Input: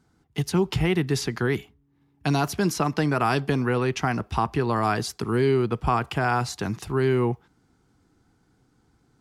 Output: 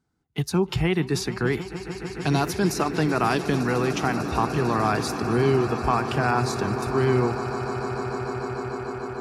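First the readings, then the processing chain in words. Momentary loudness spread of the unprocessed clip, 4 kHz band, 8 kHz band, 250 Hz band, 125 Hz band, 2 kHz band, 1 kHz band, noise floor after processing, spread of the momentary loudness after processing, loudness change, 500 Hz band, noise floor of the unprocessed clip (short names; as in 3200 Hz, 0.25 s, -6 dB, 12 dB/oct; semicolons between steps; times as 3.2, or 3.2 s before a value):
6 LU, +0.5 dB, +1.0 dB, +1.5 dB, +0.5 dB, +1.0 dB, +1.5 dB, -40 dBFS, 9 LU, 0.0 dB, +1.5 dB, -66 dBFS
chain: swelling echo 0.149 s, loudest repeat 8, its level -15 dB; spectral noise reduction 11 dB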